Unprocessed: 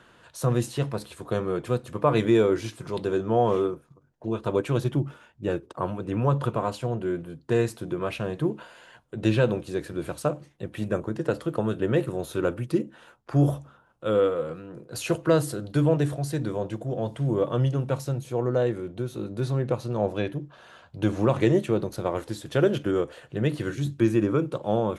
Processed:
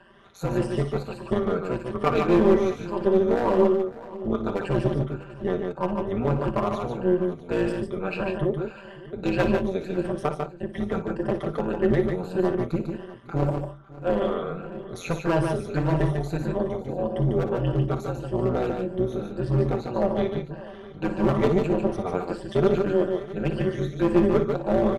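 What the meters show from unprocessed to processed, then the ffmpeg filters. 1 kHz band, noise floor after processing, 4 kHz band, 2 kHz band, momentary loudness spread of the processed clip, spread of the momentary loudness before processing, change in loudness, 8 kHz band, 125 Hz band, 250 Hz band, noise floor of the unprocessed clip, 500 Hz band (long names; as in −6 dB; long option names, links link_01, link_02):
+2.0 dB, −42 dBFS, −2.0 dB, +1.0 dB, 10 LU, 10 LU, +1.0 dB, can't be measured, −1.0 dB, +2.0 dB, −58 dBFS, +2.0 dB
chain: -filter_complex "[0:a]afftfilt=real='re*pow(10,16/40*sin(2*PI*(1.3*log(max(b,1)*sr/1024/100)/log(2)-(1.7)*(pts-256)/sr)))':imag='im*pow(10,16/40*sin(2*PI*(1.3*log(max(b,1)*sr/1024/100)/log(2)-(1.7)*(pts-256)/sr)))':win_size=1024:overlap=0.75,aemphasis=mode=reproduction:type=75fm,asoftclip=type=hard:threshold=-14.5dB,aecho=1:1:5.1:0.66,aeval=exprs='0.316*(cos(1*acos(clip(val(0)/0.316,-1,1)))-cos(1*PI/2))+0.0282*(cos(2*acos(clip(val(0)/0.316,-1,1)))-cos(2*PI/2))':channel_layout=same,tremolo=f=180:d=0.788,asplit=2[link_01][link_02];[link_02]aecho=0:1:58|147|174|552|651:0.266|0.562|0.158|0.106|0.126[link_03];[link_01][link_03]amix=inputs=2:normalize=0"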